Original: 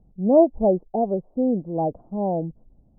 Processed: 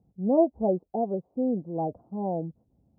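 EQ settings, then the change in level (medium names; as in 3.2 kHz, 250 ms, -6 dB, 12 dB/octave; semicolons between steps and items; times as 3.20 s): high-pass 66 Hz 24 dB/octave; band-stop 610 Hz, Q 15; -5.0 dB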